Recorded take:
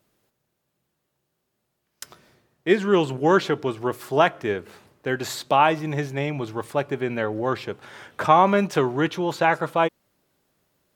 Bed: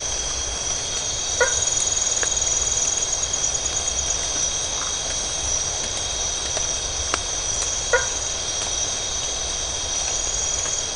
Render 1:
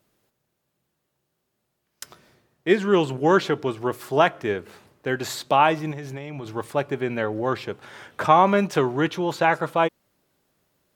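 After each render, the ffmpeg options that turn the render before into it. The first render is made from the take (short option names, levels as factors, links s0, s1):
-filter_complex "[0:a]asettb=1/sr,asplit=3[s0][s1][s2];[s0]atrim=end=5.914[s3];[s1]atrim=start=5.91:end=6.46,asetpts=PTS-STARTPTS,afade=t=in:d=0.004:c=qsin,afade=t=out:st=0.546:d=0.004:c=qsin,acompressor=threshold=0.0355:ratio=10:attack=3.2:release=140:knee=1:detection=peak[s4];[s2]atrim=start=6.456[s5];[s3][s4]acrossfade=d=0.004:c1=hsin:c2=qsin[s6];[s6][s5]acrossfade=d=0.004:c1=qsin:c2=hsin"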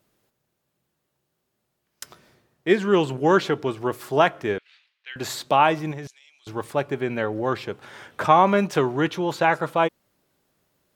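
-filter_complex "[0:a]asettb=1/sr,asplit=3[s0][s1][s2];[s0]atrim=end=4.584[s3];[s1]atrim=start=4.58:end=5.16,asetpts=PTS-STARTPTS,afade=t=in:d=0.004:c=qsin,afade=t=out:st=0.576:d=0.004:c=qsin,asuperpass=centerf=3000:order=4:qfactor=1.4[s4];[s2]atrim=start=5.156[s5];[s3][s4]acrossfade=d=0.004:c1=hsin:c2=qsin[s6];[s6][s5]acrossfade=d=0.004:c1=qsin:c2=hsin,asettb=1/sr,asplit=3[s7][s8][s9];[s7]atrim=end=6.074[s10];[s8]atrim=start=6.07:end=6.47,asetpts=PTS-STARTPTS,afade=t=in:d=0.004:c=qsin,afade=t=out:st=0.396:d=0.004:c=qsin,asuperpass=centerf=5900:order=4:qfactor=1[s11];[s9]atrim=start=6.466[s12];[s10][s11]acrossfade=d=0.004:c1=hsin:c2=qsin[s13];[s13][s12]acrossfade=d=0.004:c1=qsin:c2=hsin"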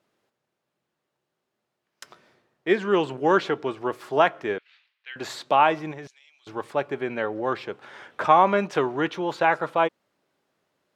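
-af "highpass=f=360:p=1,aemphasis=mode=reproduction:type=50fm"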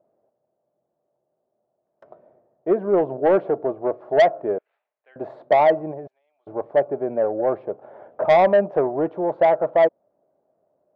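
-af "lowpass=f=640:t=q:w=4.9,asoftclip=type=tanh:threshold=0.335"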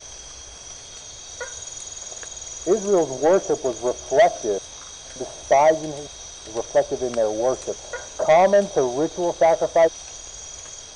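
-filter_complex "[1:a]volume=0.2[s0];[0:a][s0]amix=inputs=2:normalize=0"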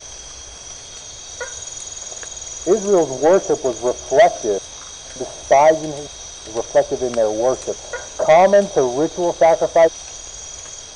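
-af "volume=1.58"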